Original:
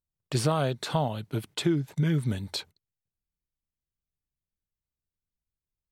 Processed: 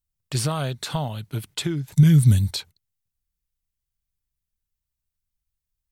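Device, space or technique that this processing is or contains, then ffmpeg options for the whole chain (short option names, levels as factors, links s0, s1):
smiley-face EQ: -filter_complex "[0:a]asettb=1/sr,asplit=3[s0][s1][s2];[s0]atrim=end=1.924[s3];[s1]atrim=start=1.92:end=2.51,asetpts=PTS-STARTPTS,afade=t=in:d=0.004:c=qsin,afade=t=out:st=0.586:d=0.004:c=qsin,bass=f=250:g=12,treble=f=4000:g=12[s4];[s2]atrim=start=2.506[s5];[s3][s4]acrossfade=d=0.004:c1=hsin:c2=qsin[s6];[s6][s5]acrossfade=d=0.004:c1=qsin:c2=hsin,lowshelf=f=94:g=8,equalizer=f=410:t=o:w=2.6:g=-6.5,highshelf=f=6600:g=6,volume=1.33"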